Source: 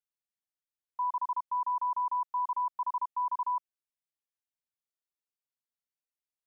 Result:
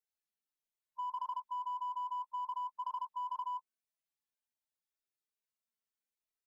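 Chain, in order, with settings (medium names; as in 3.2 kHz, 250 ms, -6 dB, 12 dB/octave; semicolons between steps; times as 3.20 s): harmonic-percussive separation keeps harmonic; comb 4.6 ms, depth 64%; in parallel at -6.5 dB: hard clipper -37.5 dBFS, distortion -14 dB; on the sum: trim -3 dB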